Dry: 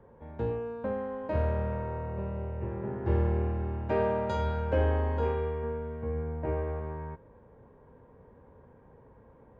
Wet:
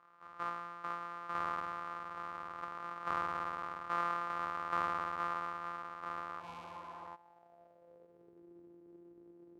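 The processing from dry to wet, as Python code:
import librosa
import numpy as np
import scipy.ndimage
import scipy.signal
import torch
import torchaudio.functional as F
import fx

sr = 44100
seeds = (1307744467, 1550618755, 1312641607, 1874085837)

y = np.r_[np.sort(x[:len(x) // 256 * 256].reshape(-1, 256), axis=1).ravel(), x[len(x) // 256 * 256:]]
y = fx.filter_sweep_bandpass(y, sr, from_hz=1200.0, to_hz=350.0, start_s=6.83, end_s=8.46, q=5.9)
y = fx.spec_repair(y, sr, seeds[0], start_s=6.43, length_s=0.61, low_hz=270.0, high_hz=2100.0, source='after')
y = F.gain(torch.from_numpy(y), 6.5).numpy()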